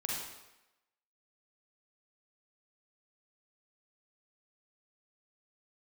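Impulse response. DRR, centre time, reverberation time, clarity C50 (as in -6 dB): -3.5 dB, 73 ms, 0.95 s, -1.0 dB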